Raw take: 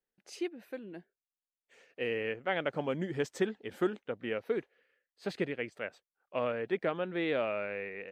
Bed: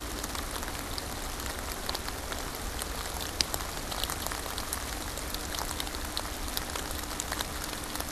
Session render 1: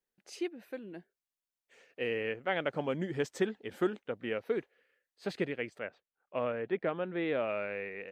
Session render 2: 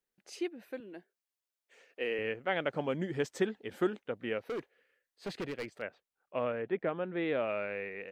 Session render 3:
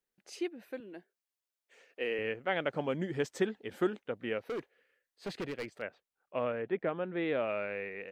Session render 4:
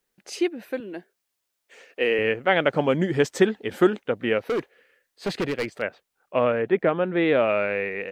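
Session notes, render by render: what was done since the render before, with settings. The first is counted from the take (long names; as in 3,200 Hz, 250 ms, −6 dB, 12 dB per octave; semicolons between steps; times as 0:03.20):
0:05.79–0:07.49: high-frequency loss of the air 230 metres
0:00.80–0:02.19: high-pass filter 270 Hz; 0:04.47–0:05.82: hard clipping −33.5 dBFS; 0:06.62–0:07.17: high-frequency loss of the air 160 metres
no processing that can be heard
level +12 dB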